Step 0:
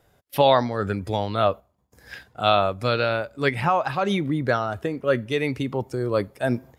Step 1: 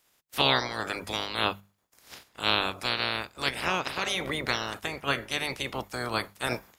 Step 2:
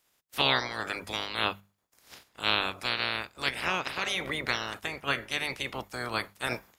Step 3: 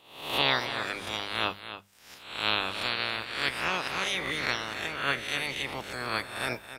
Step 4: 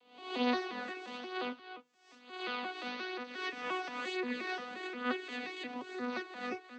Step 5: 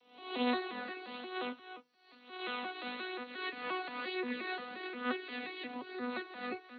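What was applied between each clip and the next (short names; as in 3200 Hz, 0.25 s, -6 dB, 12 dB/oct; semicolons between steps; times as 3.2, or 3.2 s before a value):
spectral limiter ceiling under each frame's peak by 29 dB; notches 50/100/150/200 Hz; gain -6.5 dB
dynamic EQ 2100 Hz, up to +4 dB, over -39 dBFS, Q 0.96; gain -3.5 dB
spectral swells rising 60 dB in 0.65 s; echo 0.278 s -11.5 dB; gain -2 dB
arpeggiated vocoder bare fifth, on B3, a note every 0.176 s; flange 0.54 Hz, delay 6.2 ms, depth 3.6 ms, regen +39%; gain -3 dB
nonlinear frequency compression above 3900 Hz 4:1; gain -1 dB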